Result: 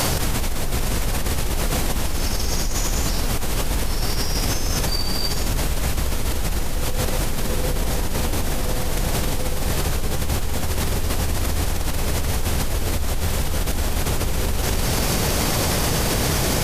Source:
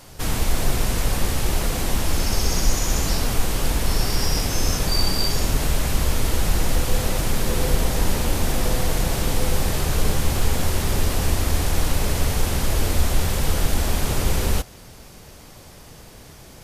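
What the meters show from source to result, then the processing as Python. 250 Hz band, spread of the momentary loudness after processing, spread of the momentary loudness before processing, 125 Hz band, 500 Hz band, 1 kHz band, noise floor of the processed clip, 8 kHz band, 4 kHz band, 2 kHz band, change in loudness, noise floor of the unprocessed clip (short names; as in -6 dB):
+1.0 dB, 5 LU, 2 LU, 0.0 dB, +1.0 dB, +1.0 dB, -23 dBFS, +1.0 dB, +1.0 dB, +1.0 dB, 0.0 dB, -44 dBFS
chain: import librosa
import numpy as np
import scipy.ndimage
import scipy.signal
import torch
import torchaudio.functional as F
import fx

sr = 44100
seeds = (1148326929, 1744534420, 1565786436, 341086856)

y = x + 10.0 ** (-21.0 / 20.0) * np.pad(x, (int(241 * sr / 1000.0), 0))[:len(x)]
y = fx.env_flatten(y, sr, amount_pct=100)
y = y * librosa.db_to_amplitude(-9.0)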